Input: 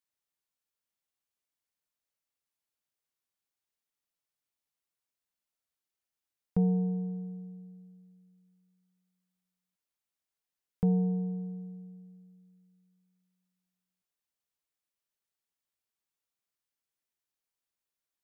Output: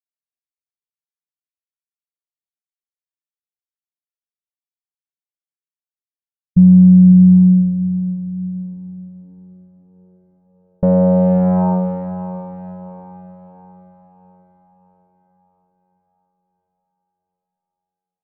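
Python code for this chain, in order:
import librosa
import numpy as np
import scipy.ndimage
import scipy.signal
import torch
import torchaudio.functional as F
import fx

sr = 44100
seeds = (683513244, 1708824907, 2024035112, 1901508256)

y = fx.fuzz(x, sr, gain_db=47.0, gate_db=-49.0)
y = fx.echo_diffused(y, sr, ms=602, feedback_pct=48, wet_db=-11.0)
y = fx.formant_shift(y, sr, semitones=-4)
y = fx.filter_sweep_lowpass(y, sr, from_hz=170.0, to_hz=810.0, start_s=8.31, end_s=11.75, q=3.0)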